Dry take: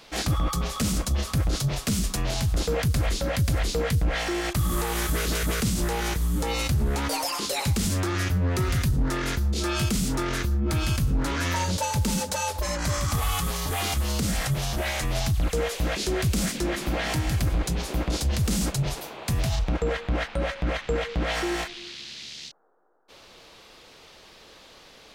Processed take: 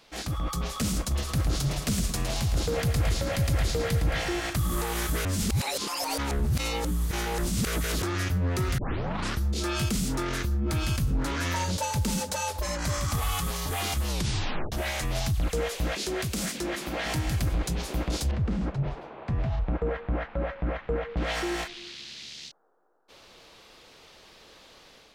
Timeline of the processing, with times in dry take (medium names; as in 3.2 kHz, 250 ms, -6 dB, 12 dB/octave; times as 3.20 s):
1.00–4.56 s: feedback delay 110 ms, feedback 55%, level -8.5 dB
5.25–8.02 s: reverse
8.78 s: tape start 0.65 s
14.08 s: tape stop 0.64 s
15.92–17.06 s: bass shelf 130 Hz -11 dB
18.31–21.17 s: low-pass 1.6 kHz
whole clip: level rider gain up to 5 dB; trim -7.5 dB